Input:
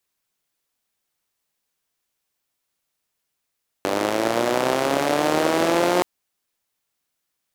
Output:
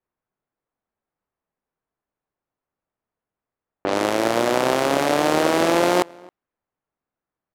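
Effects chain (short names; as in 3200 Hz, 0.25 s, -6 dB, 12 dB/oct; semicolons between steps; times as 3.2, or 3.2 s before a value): low-pass opened by the level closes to 1400 Hz, open at -17.5 dBFS; outdoor echo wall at 46 m, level -25 dB; mismatched tape noise reduction decoder only; gain +1.5 dB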